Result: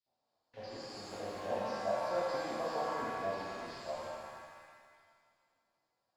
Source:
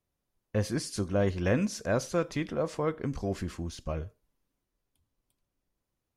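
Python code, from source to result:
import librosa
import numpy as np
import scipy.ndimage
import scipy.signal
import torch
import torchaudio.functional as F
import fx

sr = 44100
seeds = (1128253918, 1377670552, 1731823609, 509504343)

p1 = fx.doppler_pass(x, sr, speed_mps=6, closest_m=5.6, pass_at_s=2.77)
p2 = fx.graphic_eq_31(p1, sr, hz=(125, 250, 1000, 5000), db=(12, 5, 3, 7))
p3 = fx.filter_lfo_bandpass(p2, sr, shape='square', hz=7.9, low_hz=730.0, high_hz=4600.0, q=4.4)
p4 = fx.fold_sine(p3, sr, drive_db=19, ceiling_db=-50.5)
p5 = p3 + (p4 * librosa.db_to_amplitude(-6.0))
p6 = fx.air_absorb(p5, sr, metres=260.0)
p7 = p6 + fx.echo_thinned(p6, sr, ms=80, feedback_pct=72, hz=190.0, wet_db=-10.0, dry=0)
y = fx.rev_shimmer(p7, sr, seeds[0], rt60_s=1.8, semitones=7, shimmer_db=-8, drr_db=-8.5)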